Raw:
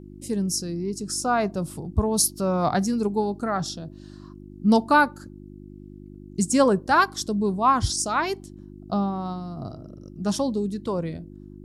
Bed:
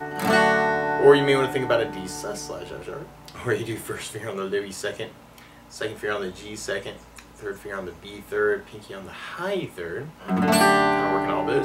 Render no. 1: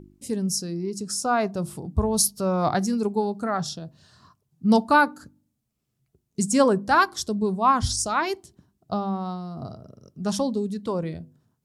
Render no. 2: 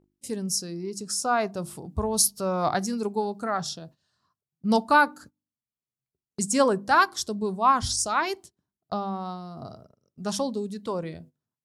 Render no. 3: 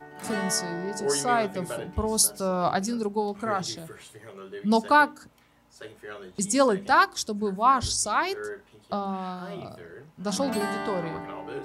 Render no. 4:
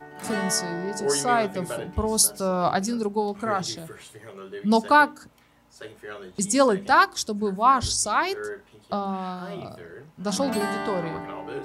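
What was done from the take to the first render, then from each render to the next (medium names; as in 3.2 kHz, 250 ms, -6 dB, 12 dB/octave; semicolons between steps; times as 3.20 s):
de-hum 50 Hz, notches 7
gate -43 dBFS, range -17 dB; bass shelf 330 Hz -7.5 dB
add bed -13.5 dB
trim +2 dB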